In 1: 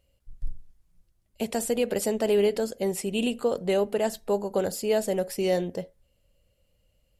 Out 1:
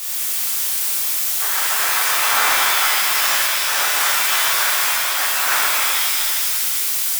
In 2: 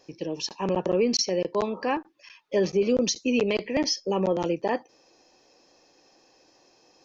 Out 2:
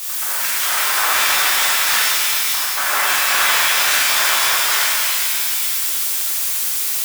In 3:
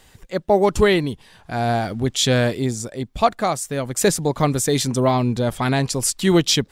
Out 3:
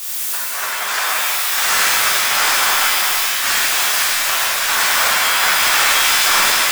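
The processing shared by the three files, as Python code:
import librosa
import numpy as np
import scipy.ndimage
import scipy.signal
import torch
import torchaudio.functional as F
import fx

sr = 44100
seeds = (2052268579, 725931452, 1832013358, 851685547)

p1 = fx.high_shelf(x, sr, hz=6100.0, db=-9.0)
p2 = fx.noise_vocoder(p1, sr, seeds[0], bands=2)
p3 = fx.highpass_res(p2, sr, hz=1600.0, q=2.8)
p4 = fx.dmg_noise_colour(p3, sr, seeds[1], colour='blue', level_db=-32.0)
p5 = fx.auto_swell(p4, sr, attack_ms=294.0)
p6 = fx.fold_sine(p5, sr, drive_db=14, ceiling_db=-7.0)
p7 = p5 + F.gain(torch.from_numpy(p6), -9.0).numpy()
p8 = fx.doubler(p7, sr, ms=42.0, db=-11)
p9 = fx.rev_shimmer(p8, sr, seeds[2], rt60_s=2.4, semitones=7, shimmer_db=-2, drr_db=-7.5)
y = F.gain(torch.from_numpy(p9), -8.0).numpy()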